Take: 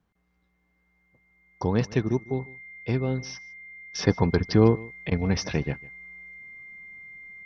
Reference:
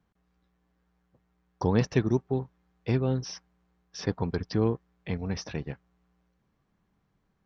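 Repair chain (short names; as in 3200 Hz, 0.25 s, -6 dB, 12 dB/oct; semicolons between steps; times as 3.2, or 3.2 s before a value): notch 2100 Hz, Q 30; interpolate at 5.1, 13 ms; inverse comb 0.151 s -22 dB; gain 0 dB, from 3.95 s -7.5 dB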